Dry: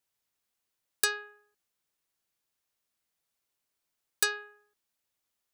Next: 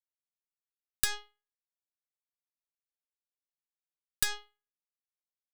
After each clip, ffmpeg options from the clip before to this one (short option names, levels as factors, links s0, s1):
-af "alimiter=limit=0.0841:level=0:latency=1:release=101,tiltshelf=f=850:g=-5.5,aeval=exprs='0.178*(cos(1*acos(clip(val(0)/0.178,-1,1)))-cos(1*PI/2))+0.0251*(cos(7*acos(clip(val(0)/0.178,-1,1)))-cos(7*PI/2))+0.02*(cos(8*acos(clip(val(0)/0.178,-1,1)))-cos(8*PI/2))':c=same,volume=1.58"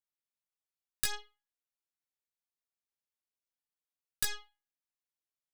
-af "flanger=delay=15.5:depth=2.6:speed=0.65"